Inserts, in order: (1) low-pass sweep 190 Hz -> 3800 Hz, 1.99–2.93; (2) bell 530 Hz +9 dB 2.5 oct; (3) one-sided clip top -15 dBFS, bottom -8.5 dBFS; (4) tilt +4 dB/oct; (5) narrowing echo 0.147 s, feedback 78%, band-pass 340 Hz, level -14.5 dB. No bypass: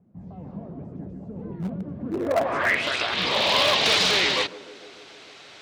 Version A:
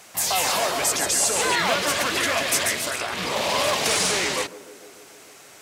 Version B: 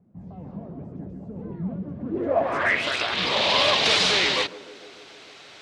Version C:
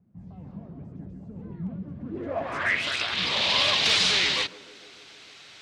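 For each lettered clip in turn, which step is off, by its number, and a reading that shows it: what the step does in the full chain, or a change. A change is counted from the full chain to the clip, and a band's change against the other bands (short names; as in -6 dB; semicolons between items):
1, 8 kHz band +15.0 dB; 3, distortion -21 dB; 2, 500 Hz band -6.0 dB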